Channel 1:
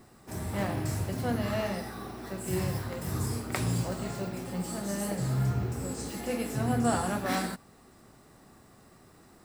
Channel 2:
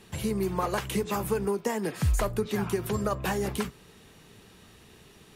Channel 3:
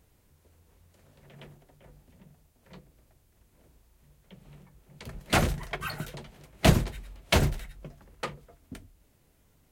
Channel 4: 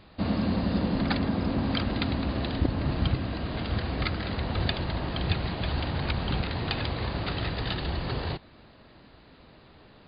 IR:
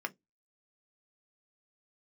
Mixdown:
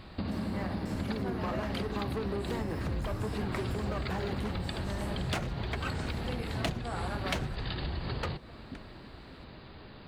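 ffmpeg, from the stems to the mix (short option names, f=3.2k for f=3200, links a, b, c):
-filter_complex "[0:a]lowpass=f=3.7k:p=1,volume=-8dB,asplit=2[a][b];[b]volume=-3.5dB[c];[1:a]lowpass=f=1.6k:p=1,asoftclip=type=tanh:threshold=-29.5dB,adelay=850,volume=0.5dB[d];[2:a]adynamicsmooth=sensitivity=6.5:basefreq=3.3k,volume=-0.5dB[e];[3:a]bass=f=250:g=6,treble=f=4k:g=5,acompressor=threshold=-32dB:ratio=6,volume=0.5dB,asplit=2[f][g];[g]volume=-10.5dB[h];[4:a]atrim=start_sample=2205[i];[c][h]amix=inputs=2:normalize=0[j];[j][i]afir=irnorm=-1:irlink=0[k];[a][d][e][f][k]amix=inputs=5:normalize=0,acompressor=threshold=-29dB:ratio=16"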